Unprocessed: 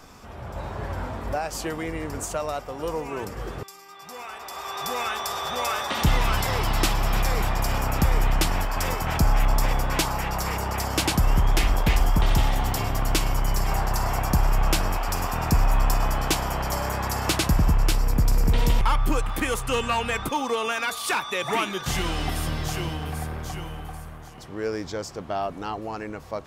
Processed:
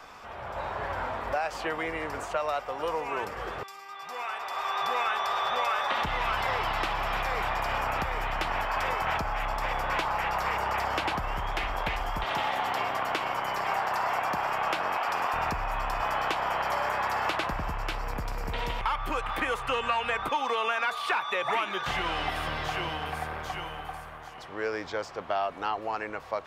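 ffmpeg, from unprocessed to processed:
ffmpeg -i in.wav -filter_complex "[0:a]asettb=1/sr,asplit=3[link_01][link_02][link_03];[link_01]atrim=end=12.244[link_04];[link_02]atrim=start=12.24:end=15.34,asetpts=PTS-STARTPTS,afade=type=in:duration=0.004:curve=qsin,afade=type=out:start_time=3.096:duration=0.004:curve=qsin,highpass=180[link_05];[link_03]atrim=start=15.336[link_06];[link_04][link_05]acrossfade=duration=0.004:curve1=hsin:curve2=qsin[link_07];[link_07][link_06]acrossfade=duration=0.004:curve1=qsin:curve2=hsin,asettb=1/sr,asplit=3[link_08][link_09][link_10];[link_08]atrim=end=16.014[link_11];[link_09]atrim=start=16.01:end=17.52,asetpts=PTS-STARTPTS,afade=type=in:duration=0.004:curve=qsin,afade=type=out:start_time=1.506:duration=0.004:curve=qsin,highpass=frequency=140:poles=1[link_12];[link_10]atrim=start=17.516[link_13];[link_11][link_12]acrossfade=duration=0.004:curve1=hsin:curve2=qsin[link_14];[link_14][link_13]acrossfade=duration=0.004:curve1=qsin:curve2=hsin,acompressor=threshold=-20dB:ratio=6,acrossover=split=520 3800:gain=0.178 1 0.224[link_15][link_16][link_17];[link_15][link_16][link_17]amix=inputs=3:normalize=0,acrossover=split=1600|3900[link_18][link_19][link_20];[link_18]acompressor=threshold=-31dB:ratio=4[link_21];[link_19]acompressor=threshold=-39dB:ratio=4[link_22];[link_20]acompressor=threshold=-54dB:ratio=4[link_23];[link_21][link_22][link_23]amix=inputs=3:normalize=0,volume=4.5dB" out.wav

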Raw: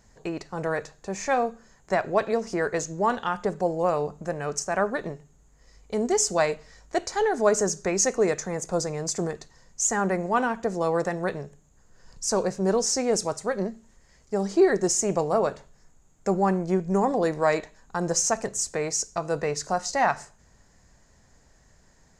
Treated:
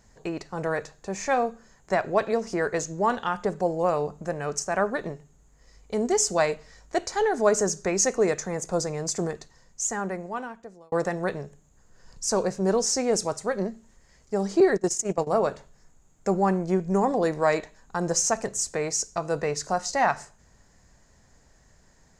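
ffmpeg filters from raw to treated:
ffmpeg -i in.wav -filter_complex "[0:a]asettb=1/sr,asplit=3[link_01][link_02][link_03];[link_01]atrim=end=14.604[link_04];[link_02]atrim=start=14.6:end=15.27,asetpts=PTS-STARTPTS,afade=type=in:duration=0.004:curve=qsin,afade=type=out:start_time=0.666:duration=0.004:curve=qsin,agate=range=-16dB:threshold=-25dB:ratio=16:release=100:detection=peak[link_05];[link_03]atrim=start=15.266[link_06];[link_04][link_05]acrossfade=duration=0.004:curve1=hsin:curve2=qsin[link_07];[link_07][link_06]acrossfade=duration=0.004:curve1=qsin:curve2=hsin,asplit=2[link_08][link_09];[link_08]atrim=end=10.92,asetpts=PTS-STARTPTS,afade=type=out:start_time=9.3:duration=1.62[link_10];[link_09]atrim=start=10.92,asetpts=PTS-STARTPTS,afade=type=in:duration=0.004:curve=hsin[link_11];[link_10][link_11]concat=n=2:v=0:a=1" out.wav

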